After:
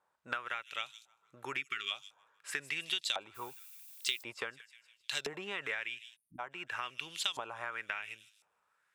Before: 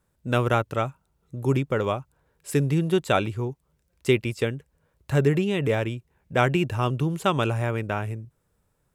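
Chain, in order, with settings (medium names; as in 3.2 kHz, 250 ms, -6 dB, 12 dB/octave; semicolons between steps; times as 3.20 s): on a send: feedback echo behind a high-pass 155 ms, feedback 39%, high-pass 5.3 kHz, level -9 dB; on the sum: LFO band-pass saw up 0.95 Hz 780–4600 Hz; bass shelf 440 Hz -6.5 dB; compression 16:1, threshold -42 dBFS, peak gain reduction 20 dB; 6.16–6.39 s: spectral selection erased 340–8700 Hz; treble shelf 2.1 kHz +11 dB; 1.58–1.91 s: time-frequency box 430–1100 Hz -28 dB; 3.34–4.22 s: added noise violet -58 dBFS; trim +4.5 dB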